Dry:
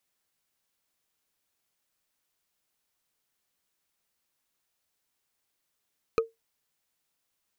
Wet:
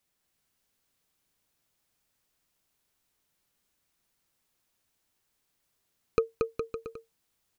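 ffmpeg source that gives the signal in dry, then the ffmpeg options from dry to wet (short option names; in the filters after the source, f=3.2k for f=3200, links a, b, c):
-f lavfi -i "aevalsrc='0.15*pow(10,-3*t/0.17)*sin(2*PI*454*t)+0.0841*pow(10,-3*t/0.05)*sin(2*PI*1251.7*t)+0.0473*pow(10,-3*t/0.022)*sin(2*PI*2453.4*t)+0.0266*pow(10,-3*t/0.012)*sin(2*PI*4055.6*t)+0.015*pow(10,-3*t/0.008)*sin(2*PI*6056.4*t)':d=0.45:s=44100"
-filter_complex "[0:a]lowshelf=f=280:g=7.5,asplit=2[a][b];[b]aecho=0:1:230|414|561.2|679|773.2:0.631|0.398|0.251|0.158|0.1[c];[a][c]amix=inputs=2:normalize=0"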